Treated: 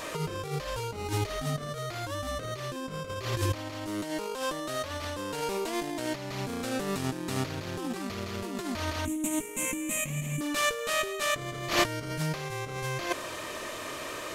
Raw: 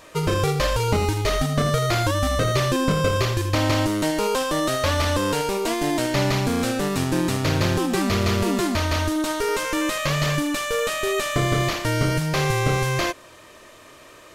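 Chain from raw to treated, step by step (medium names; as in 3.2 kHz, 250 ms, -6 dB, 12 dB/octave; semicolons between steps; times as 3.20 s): bass shelf 120 Hz -6.5 dB; compressor with a negative ratio -30 dBFS, ratio -0.5; 9.05–10.41 s: FFT filter 100 Hz 0 dB, 250 Hz +11 dB, 410 Hz -8 dB, 790 Hz -7 dB, 1.5 kHz -17 dB, 2.4 kHz +1 dB, 5 kHz -23 dB, 7 kHz +8 dB, 14 kHz +4 dB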